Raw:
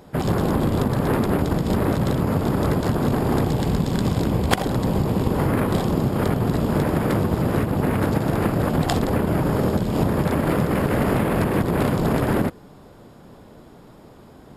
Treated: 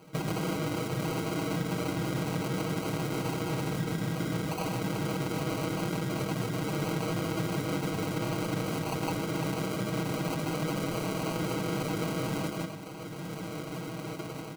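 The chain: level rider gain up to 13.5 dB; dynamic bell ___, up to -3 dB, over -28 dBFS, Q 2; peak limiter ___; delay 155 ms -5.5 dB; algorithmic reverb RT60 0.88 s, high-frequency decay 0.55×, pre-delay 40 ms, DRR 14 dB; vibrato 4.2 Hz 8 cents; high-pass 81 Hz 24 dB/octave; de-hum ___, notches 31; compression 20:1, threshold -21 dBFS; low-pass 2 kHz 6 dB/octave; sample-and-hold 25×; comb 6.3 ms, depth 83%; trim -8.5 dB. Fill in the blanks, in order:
150 Hz, -11 dBFS, 104 Hz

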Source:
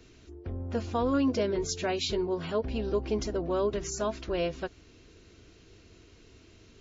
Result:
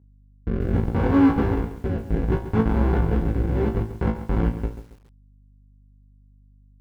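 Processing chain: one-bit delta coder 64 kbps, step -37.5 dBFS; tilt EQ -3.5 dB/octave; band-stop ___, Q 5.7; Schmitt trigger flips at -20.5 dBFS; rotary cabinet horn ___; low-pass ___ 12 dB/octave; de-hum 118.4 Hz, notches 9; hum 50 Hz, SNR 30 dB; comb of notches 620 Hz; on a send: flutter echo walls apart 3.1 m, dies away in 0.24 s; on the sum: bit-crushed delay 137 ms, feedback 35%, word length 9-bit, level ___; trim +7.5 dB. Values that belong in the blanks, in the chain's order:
180 Hz, 0.65 Hz, 1.4 kHz, -12 dB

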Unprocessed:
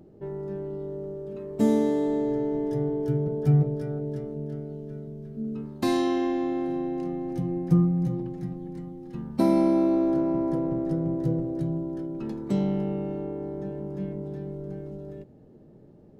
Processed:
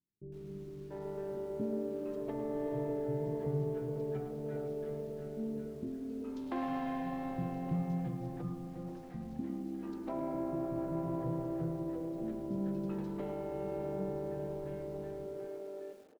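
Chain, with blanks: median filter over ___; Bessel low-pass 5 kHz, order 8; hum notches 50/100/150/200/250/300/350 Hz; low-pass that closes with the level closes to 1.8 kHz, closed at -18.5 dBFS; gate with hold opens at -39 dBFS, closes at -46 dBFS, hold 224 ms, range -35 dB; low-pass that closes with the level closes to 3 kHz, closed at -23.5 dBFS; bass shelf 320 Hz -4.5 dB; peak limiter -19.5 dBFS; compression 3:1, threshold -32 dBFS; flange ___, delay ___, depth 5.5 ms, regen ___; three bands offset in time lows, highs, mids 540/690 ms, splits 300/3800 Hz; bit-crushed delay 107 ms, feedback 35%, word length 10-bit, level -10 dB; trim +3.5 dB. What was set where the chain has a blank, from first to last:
15 samples, 1.8 Hz, 7 ms, -74%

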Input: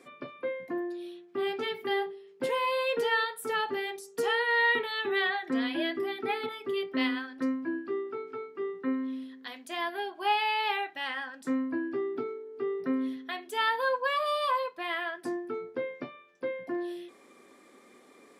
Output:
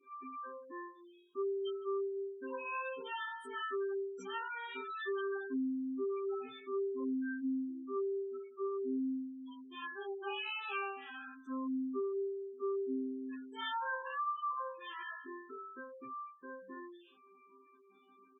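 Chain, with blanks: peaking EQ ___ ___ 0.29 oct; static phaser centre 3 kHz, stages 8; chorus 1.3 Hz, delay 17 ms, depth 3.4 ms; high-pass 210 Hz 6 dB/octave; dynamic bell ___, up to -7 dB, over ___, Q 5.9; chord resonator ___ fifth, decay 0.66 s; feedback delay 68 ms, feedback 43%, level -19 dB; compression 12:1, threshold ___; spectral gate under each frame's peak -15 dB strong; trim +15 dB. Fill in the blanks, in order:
310 Hz, +6 dB, 3.3 kHz, -58 dBFS, C3, -48 dBFS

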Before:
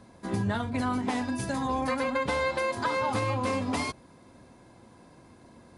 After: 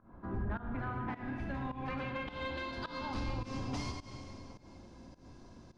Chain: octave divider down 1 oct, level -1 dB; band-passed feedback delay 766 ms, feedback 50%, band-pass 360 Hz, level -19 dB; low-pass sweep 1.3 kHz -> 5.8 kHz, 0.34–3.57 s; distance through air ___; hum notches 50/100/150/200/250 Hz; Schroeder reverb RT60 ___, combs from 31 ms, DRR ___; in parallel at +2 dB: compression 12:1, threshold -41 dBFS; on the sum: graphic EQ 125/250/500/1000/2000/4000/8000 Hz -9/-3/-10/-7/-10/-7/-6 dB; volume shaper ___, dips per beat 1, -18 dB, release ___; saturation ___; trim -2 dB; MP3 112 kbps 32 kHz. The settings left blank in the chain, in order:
57 m, 1.8 s, 4 dB, 105 bpm, 187 ms, -25.5 dBFS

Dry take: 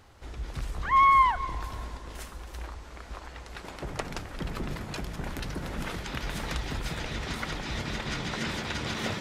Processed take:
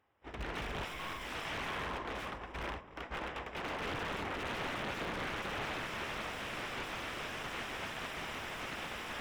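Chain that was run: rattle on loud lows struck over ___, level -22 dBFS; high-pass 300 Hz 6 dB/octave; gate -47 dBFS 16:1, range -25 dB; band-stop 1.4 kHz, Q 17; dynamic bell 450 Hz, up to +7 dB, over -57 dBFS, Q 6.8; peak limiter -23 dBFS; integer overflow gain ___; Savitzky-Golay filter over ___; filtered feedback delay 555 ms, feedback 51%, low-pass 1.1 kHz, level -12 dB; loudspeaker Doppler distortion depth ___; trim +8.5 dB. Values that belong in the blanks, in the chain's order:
-32 dBFS, 39 dB, 25 samples, 0.7 ms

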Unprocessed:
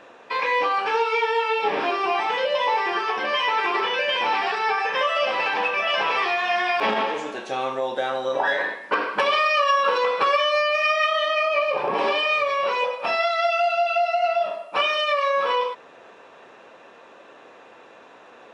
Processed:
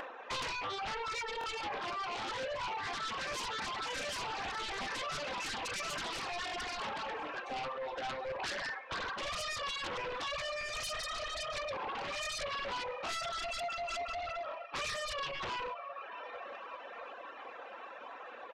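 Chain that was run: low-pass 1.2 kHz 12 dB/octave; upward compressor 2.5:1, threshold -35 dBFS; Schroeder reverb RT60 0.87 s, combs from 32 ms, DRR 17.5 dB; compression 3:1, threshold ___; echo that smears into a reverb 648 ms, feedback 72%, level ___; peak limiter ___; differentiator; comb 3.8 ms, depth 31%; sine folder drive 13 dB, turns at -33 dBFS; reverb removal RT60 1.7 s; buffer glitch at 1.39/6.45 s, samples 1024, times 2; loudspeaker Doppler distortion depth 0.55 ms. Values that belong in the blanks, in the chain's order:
-25 dBFS, -16 dB, -20 dBFS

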